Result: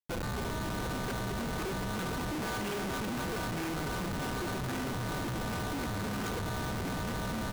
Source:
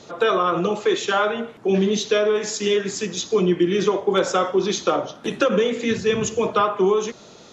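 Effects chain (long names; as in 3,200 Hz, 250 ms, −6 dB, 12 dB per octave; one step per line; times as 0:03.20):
running median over 9 samples
high-pass filter 140 Hz 6 dB per octave
comb filter 3.6 ms, depth 61%
gate with flip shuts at −14 dBFS, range −33 dB
steady tone 1,500 Hz −30 dBFS
delay with pitch and tempo change per echo 229 ms, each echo −4 semitones, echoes 3
comparator with hysteresis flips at −26.5 dBFS
level −7 dB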